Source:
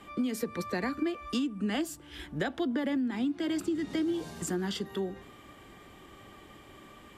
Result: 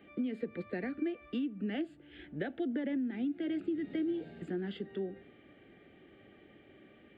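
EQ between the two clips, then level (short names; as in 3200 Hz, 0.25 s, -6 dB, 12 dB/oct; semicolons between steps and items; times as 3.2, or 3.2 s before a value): HPF 360 Hz 6 dB/oct; tape spacing loss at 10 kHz 39 dB; fixed phaser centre 2500 Hz, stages 4; +2.5 dB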